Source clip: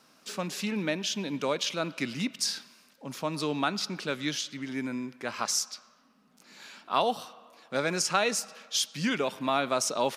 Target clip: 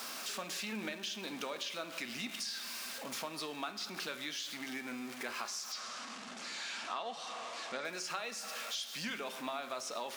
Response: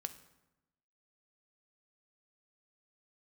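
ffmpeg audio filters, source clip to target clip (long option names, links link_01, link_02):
-filter_complex "[0:a]aeval=exprs='val(0)+0.5*0.015*sgn(val(0))':channel_layout=same,acrossover=split=4400[link_01][link_02];[link_02]acompressor=threshold=-36dB:ratio=4:attack=1:release=60[link_03];[link_01][link_03]amix=inputs=2:normalize=0,highpass=frequency=810:poles=1,acompressor=threshold=-37dB:ratio=6,asettb=1/sr,asplit=3[link_04][link_05][link_06];[link_04]atrim=end=5.724[link_07];[link_05]atrim=start=5.72:end=7.85,asetpts=PTS-STARTPTS,afade=type=in:duration=0.004:curve=qsin,afade=type=out:start_time=2.126:duration=0.004:curve=qsin,lowpass=frequency=7700:width=0.5412,lowpass=frequency=7700:width=1.3066[link_08];[link_06]atrim=start=7.846[link_09];[link_07][link_08]acrossfade=duration=0.004:curve1=hsin:curve2=qsin[link_10];[link_10][link_09]acrossfade=duration=0.004:curve1=qsin:curve2=hsin[link_11];[1:a]atrim=start_sample=2205,asetrate=61740,aresample=44100[link_12];[link_11][link_12]afir=irnorm=-1:irlink=0,volume=5dB"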